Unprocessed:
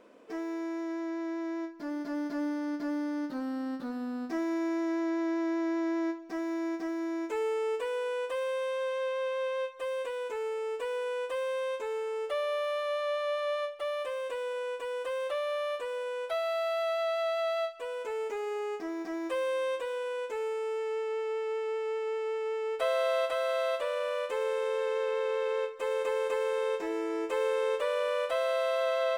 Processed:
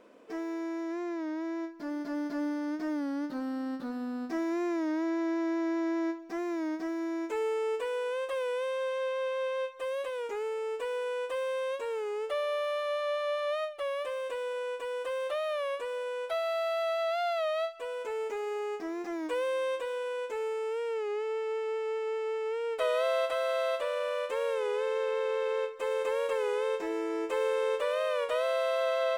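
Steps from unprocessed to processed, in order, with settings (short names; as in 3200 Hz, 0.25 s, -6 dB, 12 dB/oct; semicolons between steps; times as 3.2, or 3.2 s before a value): record warp 33 1/3 rpm, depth 100 cents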